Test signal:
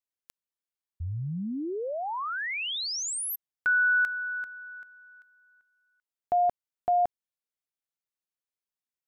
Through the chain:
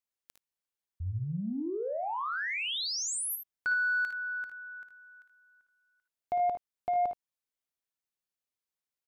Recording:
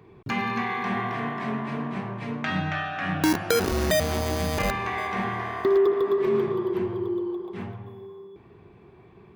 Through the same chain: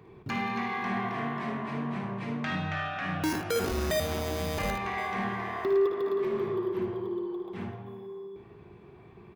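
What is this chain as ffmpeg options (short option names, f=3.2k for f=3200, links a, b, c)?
-filter_complex "[0:a]asplit=2[a][b];[b]acompressor=threshold=-31dB:ratio=6:attack=1:release=364:knee=6:detection=rms,volume=-2.5dB[c];[a][c]amix=inputs=2:normalize=0,asoftclip=type=tanh:threshold=-16.5dB,aecho=1:1:56|76:0.376|0.299,volume=-6dB"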